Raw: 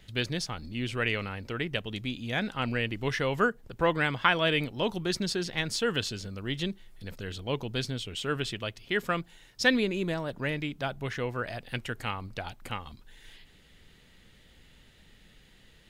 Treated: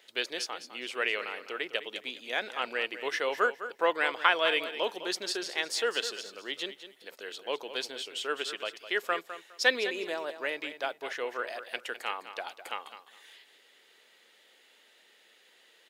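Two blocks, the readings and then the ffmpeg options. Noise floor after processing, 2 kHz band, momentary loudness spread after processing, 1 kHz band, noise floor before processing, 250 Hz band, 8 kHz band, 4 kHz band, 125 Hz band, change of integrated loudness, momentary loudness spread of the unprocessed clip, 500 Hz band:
-62 dBFS, 0.0 dB, 13 LU, 0.0 dB, -58 dBFS, -12.0 dB, 0.0 dB, 0.0 dB, under -30 dB, -1.0 dB, 12 LU, -1.0 dB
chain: -af "highpass=f=400:w=0.5412,highpass=f=400:w=1.3066,aecho=1:1:206|412|618:0.251|0.0527|0.0111" -ar 48000 -c:a aac -b:a 128k

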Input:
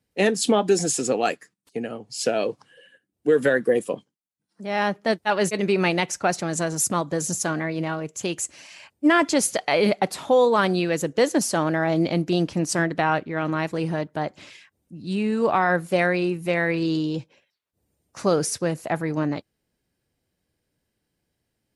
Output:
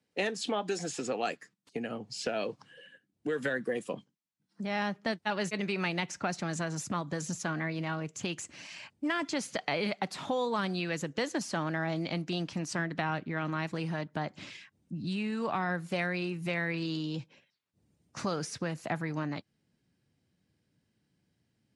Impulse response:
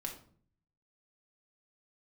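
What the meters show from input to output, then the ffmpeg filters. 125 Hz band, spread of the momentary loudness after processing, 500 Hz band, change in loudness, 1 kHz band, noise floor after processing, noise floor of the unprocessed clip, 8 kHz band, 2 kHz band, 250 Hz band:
-7.5 dB, 9 LU, -13.0 dB, -11.0 dB, -10.5 dB, -79 dBFS, -79 dBFS, -14.5 dB, -8.5 dB, -10.0 dB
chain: -filter_complex "[0:a]highpass=160,lowpass=7.1k,asplit=2[a][b];[b]acompressor=threshold=-30dB:ratio=6,volume=0.5dB[c];[a][c]amix=inputs=2:normalize=0,asubboost=boost=4.5:cutoff=210,acrossover=split=630|3800[d][e][f];[d]acompressor=threshold=-28dB:ratio=4[g];[e]acompressor=threshold=-24dB:ratio=4[h];[f]acompressor=threshold=-36dB:ratio=4[i];[g][h][i]amix=inputs=3:normalize=0,volume=-7dB"

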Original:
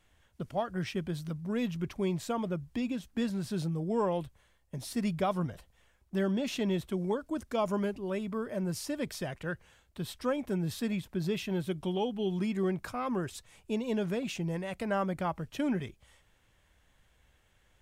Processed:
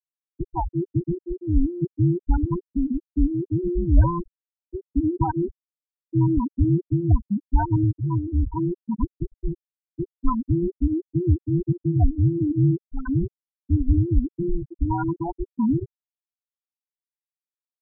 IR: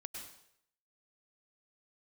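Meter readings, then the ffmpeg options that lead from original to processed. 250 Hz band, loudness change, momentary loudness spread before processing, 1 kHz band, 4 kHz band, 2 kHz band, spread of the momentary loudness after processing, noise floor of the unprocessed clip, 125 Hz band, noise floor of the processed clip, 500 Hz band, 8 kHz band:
+8.5 dB, +9.5 dB, 7 LU, +6.0 dB, under -40 dB, n/a, 11 LU, -68 dBFS, +15.0 dB, under -85 dBFS, +1.5 dB, under -30 dB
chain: -af "afftfilt=real='real(if(between(b,1,1008),(2*floor((b-1)/24)+1)*24-b,b),0)':imag='imag(if(between(b,1,1008),(2*floor((b-1)/24)+1)*24-b,b),0)*if(between(b,1,1008),-1,1)':win_size=2048:overlap=0.75,aemphasis=mode=reproduction:type=bsi,aecho=1:1:61|122|183:0.1|0.042|0.0176,acontrast=32,afftfilt=real='re*gte(hypot(re,im),0.316)':imag='im*gte(hypot(re,im),0.316)':win_size=1024:overlap=0.75"

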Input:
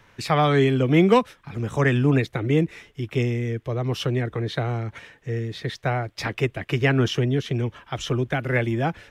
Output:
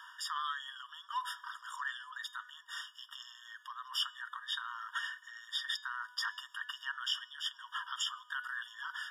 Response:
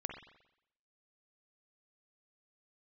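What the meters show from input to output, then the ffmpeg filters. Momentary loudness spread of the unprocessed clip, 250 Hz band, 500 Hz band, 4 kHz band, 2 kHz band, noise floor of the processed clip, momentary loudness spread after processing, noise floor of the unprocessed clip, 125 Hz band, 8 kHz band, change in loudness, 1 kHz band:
11 LU, under -40 dB, under -40 dB, -3.0 dB, -10.0 dB, -60 dBFS, 11 LU, -58 dBFS, under -40 dB, -5.5 dB, -16.0 dB, -12.5 dB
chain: -af "areverse,acompressor=threshold=-28dB:ratio=16,areverse,bandreject=f=246.3:t=h:w=4,bandreject=f=492.6:t=h:w=4,bandreject=f=738.9:t=h:w=4,bandreject=f=985.2:t=h:w=4,bandreject=f=1.2315k:t=h:w=4,bandreject=f=1.4778k:t=h:w=4,bandreject=f=1.7241k:t=h:w=4,bandreject=f=1.9704k:t=h:w=4,bandreject=f=2.2167k:t=h:w=4,bandreject=f=2.463k:t=h:w=4,bandreject=f=2.7093k:t=h:w=4,bandreject=f=2.9556k:t=h:w=4,bandreject=f=3.2019k:t=h:w=4,bandreject=f=3.4482k:t=h:w=4,bandreject=f=3.6945k:t=h:w=4,bandreject=f=3.9408k:t=h:w=4,bandreject=f=4.1871k:t=h:w=4,bandreject=f=4.4334k:t=h:w=4,bandreject=f=4.6797k:t=h:w=4,bandreject=f=4.926k:t=h:w=4,bandreject=f=5.1723k:t=h:w=4,bandreject=f=5.4186k:t=h:w=4,bandreject=f=5.6649k:t=h:w=4,bandreject=f=5.9112k:t=h:w=4,bandreject=f=6.1575k:t=h:w=4,bandreject=f=6.4038k:t=h:w=4,bandreject=f=6.6501k:t=h:w=4,bandreject=f=6.8964k:t=h:w=4,bandreject=f=7.1427k:t=h:w=4,bandreject=f=7.389k:t=h:w=4,alimiter=level_in=5.5dB:limit=-24dB:level=0:latency=1:release=60,volume=-5.5dB,afftfilt=real='re*eq(mod(floor(b*sr/1024/940),2),1)':imag='im*eq(mod(floor(b*sr/1024/940),2),1)':win_size=1024:overlap=0.75,volume=8dB"

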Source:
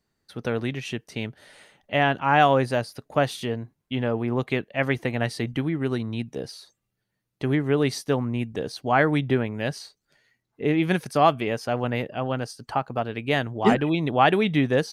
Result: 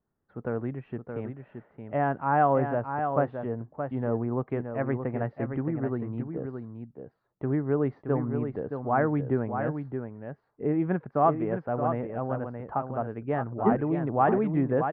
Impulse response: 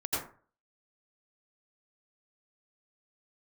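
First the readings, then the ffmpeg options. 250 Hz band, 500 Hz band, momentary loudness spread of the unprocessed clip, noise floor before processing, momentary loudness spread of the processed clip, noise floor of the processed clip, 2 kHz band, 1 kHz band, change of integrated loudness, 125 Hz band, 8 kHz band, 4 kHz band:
-3.5 dB, -3.5 dB, 12 LU, -80 dBFS, 14 LU, -74 dBFS, -11.0 dB, -3.5 dB, -4.0 dB, -3.0 dB, under -35 dB, under -30 dB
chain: -filter_complex "[0:a]lowpass=f=1.4k:w=0.5412,lowpass=f=1.4k:w=1.3066,asplit=2[a][b];[b]aecho=0:1:622:0.447[c];[a][c]amix=inputs=2:normalize=0,volume=-4dB"

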